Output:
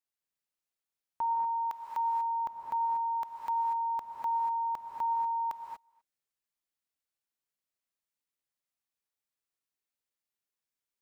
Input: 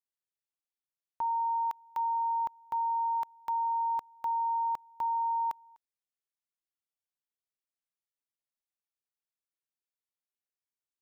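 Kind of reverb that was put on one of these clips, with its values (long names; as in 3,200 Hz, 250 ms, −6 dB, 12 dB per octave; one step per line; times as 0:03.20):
reverb whose tail is shaped and stops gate 260 ms rising, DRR 1.5 dB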